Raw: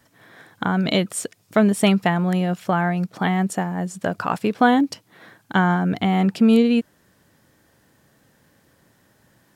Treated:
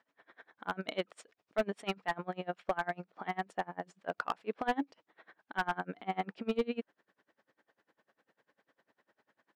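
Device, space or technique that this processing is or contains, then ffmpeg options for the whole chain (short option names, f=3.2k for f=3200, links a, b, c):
helicopter radio: -af "highpass=400,lowpass=2.8k,aeval=exprs='val(0)*pow(10,-28*(0.5-0.5*cos(2*PI*10*n/s))/20)':c=same,asoftclip=type=hard:threshold=-18dB,volume=-4.5dB"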